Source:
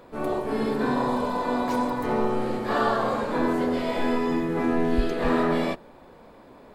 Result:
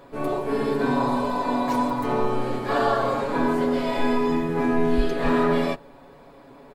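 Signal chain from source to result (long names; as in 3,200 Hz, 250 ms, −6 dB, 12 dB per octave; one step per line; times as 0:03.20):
comb filter 7.2 ms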